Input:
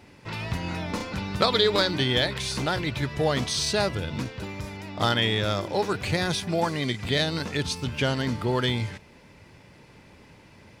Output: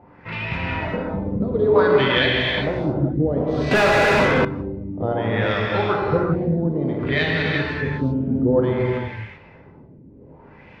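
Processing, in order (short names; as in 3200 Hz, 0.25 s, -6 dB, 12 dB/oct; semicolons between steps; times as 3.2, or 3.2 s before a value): LFO low-pass sine 0.58 Hz 240–2600 Hz; non-linear reverb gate 0.42 s flat, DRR -2.5 dB; 3.71–4.45 overdrive pedal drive 30 dB, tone 1200 Hz, clips at -6.5 dBFS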